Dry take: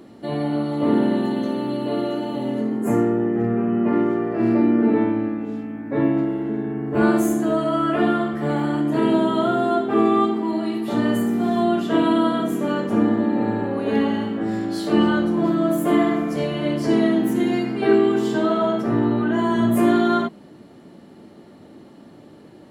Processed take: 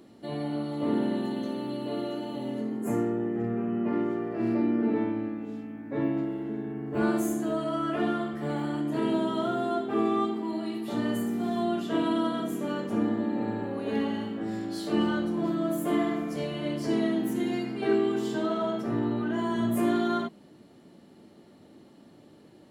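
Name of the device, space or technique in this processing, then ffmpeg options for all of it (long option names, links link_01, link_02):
exciter from parts: -filter_complex "[0:a]asplit=2[link_01][link_02];[link_02]highpass=2100,asoftclip=type=tanh:threshold=-34.5dB,volume=-5dB[link_03];[link_01][link_03]amix=inputs=2:normalize=0,volume=-8.5dB"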